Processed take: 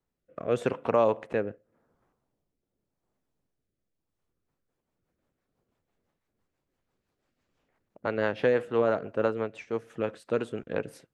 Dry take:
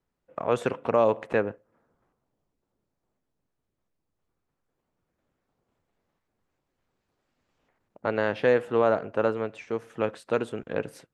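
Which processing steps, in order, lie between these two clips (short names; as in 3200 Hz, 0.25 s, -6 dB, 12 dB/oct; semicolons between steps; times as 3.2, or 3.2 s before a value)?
rotary speaker horn 0.85 Hz, later 6 Hz, at 3.93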